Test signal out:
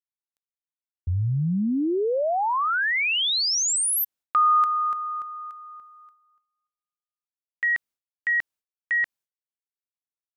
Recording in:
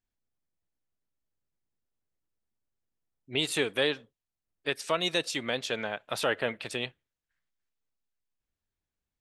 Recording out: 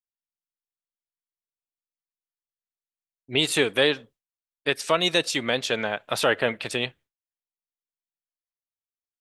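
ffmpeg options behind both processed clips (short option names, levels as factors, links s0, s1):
-af "agate=range=0.0224:threshold=0.00224:ratio=3:detection=peak,volume=2.11"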